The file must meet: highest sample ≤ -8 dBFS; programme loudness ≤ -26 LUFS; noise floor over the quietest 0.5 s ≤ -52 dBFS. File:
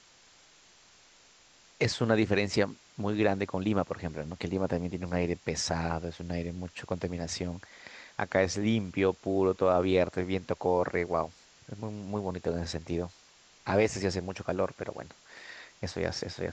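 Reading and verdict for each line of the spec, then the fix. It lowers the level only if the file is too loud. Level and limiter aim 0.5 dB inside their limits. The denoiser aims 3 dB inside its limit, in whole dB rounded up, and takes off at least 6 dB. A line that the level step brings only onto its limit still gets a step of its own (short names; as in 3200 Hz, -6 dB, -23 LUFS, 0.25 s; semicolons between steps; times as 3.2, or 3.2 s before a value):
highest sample -11.0 dBFS: OK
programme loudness -31.0 LUFS: OK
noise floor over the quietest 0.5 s -59 dBFS: OK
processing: none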